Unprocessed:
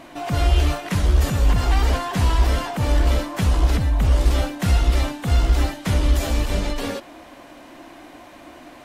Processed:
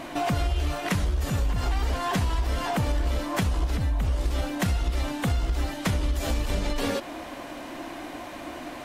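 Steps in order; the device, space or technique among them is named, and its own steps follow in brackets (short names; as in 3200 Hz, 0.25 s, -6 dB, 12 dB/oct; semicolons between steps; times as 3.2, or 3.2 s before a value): serial compression, peaks first (compressor, threshold -25 dBFS, peak gain reduction 13.5 dB; compressor 1.5:1, threshold -31 dBFS, peak gain reduction 3.5 dB); gain +5 dB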